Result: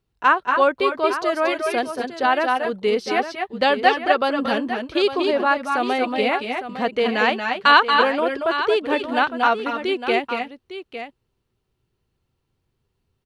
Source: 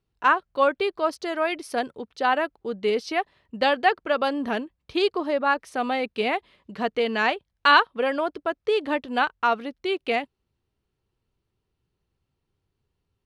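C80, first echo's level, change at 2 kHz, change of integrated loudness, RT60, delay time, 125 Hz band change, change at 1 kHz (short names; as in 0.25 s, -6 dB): none, -7.5 dB, +4.5 dB, +4.5 dB, none, 0.23 s, n/a, +4.5 dB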